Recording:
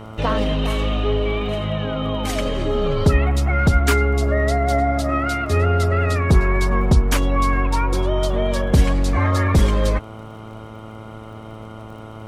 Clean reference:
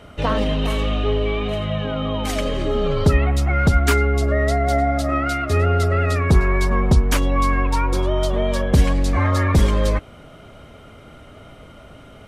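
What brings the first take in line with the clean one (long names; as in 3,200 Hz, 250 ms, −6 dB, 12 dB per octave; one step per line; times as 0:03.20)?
click removal
hum removal 109.7 Hz, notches 13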